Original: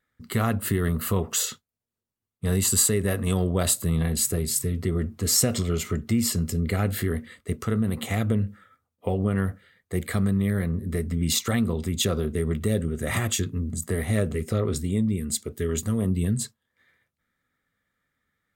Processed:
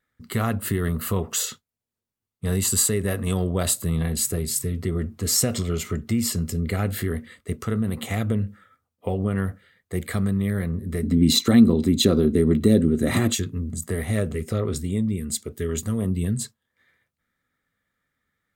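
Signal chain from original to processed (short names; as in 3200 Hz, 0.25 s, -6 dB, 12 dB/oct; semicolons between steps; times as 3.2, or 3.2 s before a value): 11.03–13.35 small resonant body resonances 270/4000 Hz, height 14 dB, ringing for 20 ms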